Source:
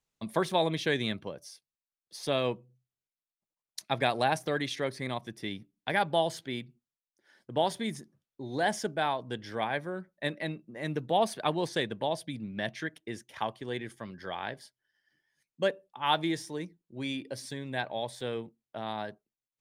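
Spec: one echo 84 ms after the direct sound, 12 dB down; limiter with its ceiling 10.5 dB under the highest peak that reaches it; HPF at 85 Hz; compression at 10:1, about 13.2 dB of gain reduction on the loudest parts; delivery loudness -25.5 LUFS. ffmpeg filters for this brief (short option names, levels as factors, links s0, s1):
-af "highpass=85,acompressor=threshold=0.0178:ratio=10,alimiter=level_in=1.58:limit=0.0631:level=0:latency=1,volume=0.631,aecho=1:1:84:0.251,volume=6.68"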